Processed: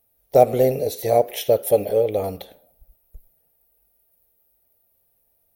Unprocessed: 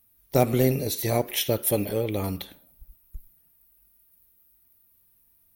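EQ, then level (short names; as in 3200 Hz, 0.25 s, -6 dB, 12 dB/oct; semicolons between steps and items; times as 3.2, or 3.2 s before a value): band shelf 580 Hz +13.5 dB 1.1 oct; -3.5 dB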